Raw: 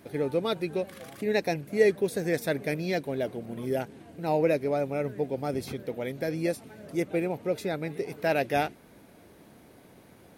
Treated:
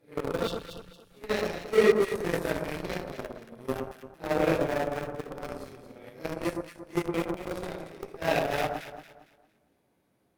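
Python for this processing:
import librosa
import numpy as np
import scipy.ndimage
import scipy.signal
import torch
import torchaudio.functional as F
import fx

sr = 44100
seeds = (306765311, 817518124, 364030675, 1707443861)

p1 = fx.phase_scramble(x, sr, seeds[0], window_ms=200)
p2 = fx.hum_notches(p1, sr, base_hz=50, count=5)
p3 = fx.schmitt(p2, sr, flips_db=-23.0)
p4 = p2 + (p3 * 10.0 ** (-7.0 / 20.0))
p5 = fx.cheby_harmonics(p4, sr, harmonics=(7,), levels_db=(-18,), full_scale_db=-10.5)
p6 = fx.brickwall_bandstop(p5, sr, low_hz=180.0, high_hz=2600.0, at=(0.47, 1.11))
y = p6 + fx.echo_alternate(p6, sr, ms=114, hz=1400.0, feedback_pct=56, wet_db=-4.5, dry=0)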